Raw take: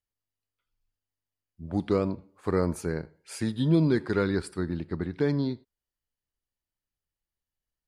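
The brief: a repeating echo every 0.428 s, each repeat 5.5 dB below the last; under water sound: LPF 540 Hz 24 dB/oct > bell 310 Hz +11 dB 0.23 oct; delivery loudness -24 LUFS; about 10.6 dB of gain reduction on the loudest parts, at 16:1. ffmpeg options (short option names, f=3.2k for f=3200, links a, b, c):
-af "acompressor=threshold=-29dB:ratio=16,lowpass=f=540:w=0.5412,lowpass=f=540:w=1.3066,equalizer=f=310:t=o:w=0.23:g=11,aecho=1:1:428|856|1284|1712|2140|2568|2996:0.531|0.281|0.149|0.079|0.0419|0.0222|0.0118,volume=8.5dB"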